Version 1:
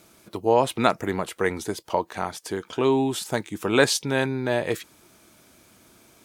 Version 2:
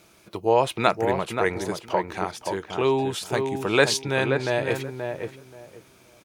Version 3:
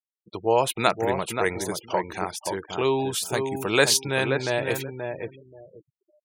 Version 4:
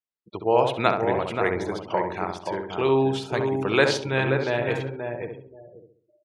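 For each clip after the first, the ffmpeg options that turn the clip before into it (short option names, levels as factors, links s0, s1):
-filter_complex "[0:a]equalizer=f=250:t=o:w=0.33:g=-8,equalizer=f=2500:t=o:w=0.33:g=4,equalizer=f=8000:t=o:w=0.33:g=-4,equalizer=f=12500:t=o:w=0.33:g=-7,asplit=2[s0][s1];[s1]adelay=529,lowpass=f=1400:p=1,volume=0.562,asplit=2[s2][s3];[s3]adelay=529,lowpass=f=1400:p=1,volume=0.21,asplit=2[s4][s5];[s5]adelay=529,lowpass=f=1400:p=1,volume=0.21[s6];[s2][s4][s6]amix=inputs=3:normalize=0[s7];[s0][s7]amix=inputs=2:normalize=0"
-af "aemphasis=mode=production:type=50kf,afftfilt=real='re*gte(hypot(re,im),0.0141)':imag='im*gte(hypot(re,im),0.0141)':win_size=1024:overlap=0.75,volume=0.841"
-filter_complex "[0:a]lowpass=3200,asplit=2[s0][s1];[s1]adelay=67,lowpass=f=1300:p=1,volume=0.631,asplit=2[s2][s3];[s3]adelay=67,lowpass=f=1300:p=1,volume=0.44,asplit=2[s4][s5];[s5]adelay=67,lowpass=f=1300:p=1,volume=0.44,asplit=2[s6][s7];[s7]adelay=67,lowpass=f=1300:p=1,volume=0.44,asplit=2[s8][s9];[s9]adelay=67,lowpass=f=1300:p=1,volume=0.44,asplit=2[s10][s11];[s11]adelay=67,lowpass=f=1300:p=1,volume=0.44[s12];[s2][s4][s6][s8][s10][s12]amix=inputs=6:normalize=0[s13];[s0][s13]amix=inputs=2:normalize=0"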